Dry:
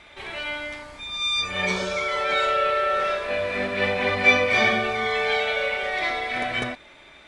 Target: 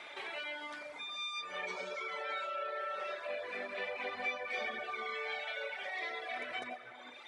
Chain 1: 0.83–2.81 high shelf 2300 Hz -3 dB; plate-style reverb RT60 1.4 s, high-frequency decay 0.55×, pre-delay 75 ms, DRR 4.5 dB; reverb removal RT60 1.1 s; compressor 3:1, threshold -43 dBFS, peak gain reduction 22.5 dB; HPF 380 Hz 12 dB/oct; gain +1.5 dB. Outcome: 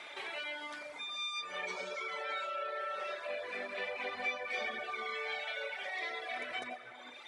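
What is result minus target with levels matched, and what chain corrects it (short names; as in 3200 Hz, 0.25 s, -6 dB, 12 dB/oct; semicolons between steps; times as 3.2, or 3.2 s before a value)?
8000 Hz band +2.5 dB
0.83–2.81 high shelf 2300 Hz -3 dB; plate-style reverb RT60 1.4 s, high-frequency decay 0.55×, pre-delay 75 ms, DRR 4.5 dB; reverb removal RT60 1.1 s; compressor 3:1, threshold -43 dBFS, peak gain reduction 22.5 dB; HPF 380 Hz 12 dB/oct; high shelf 4700 Hz -5 dB; gain +1.5 dB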